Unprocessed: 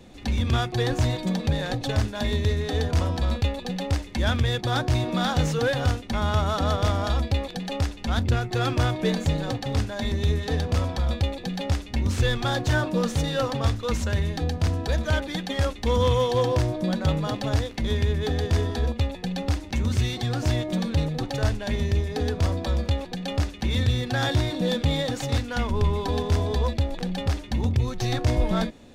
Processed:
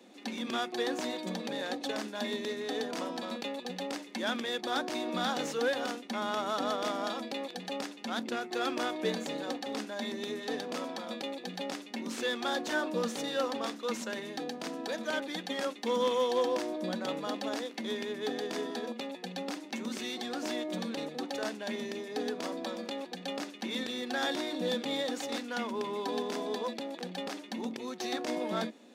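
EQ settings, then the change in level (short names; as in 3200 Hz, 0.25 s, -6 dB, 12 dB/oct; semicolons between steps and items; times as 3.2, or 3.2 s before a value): steep high-pass 210 Hz 48 dB/oct; -5.5 dB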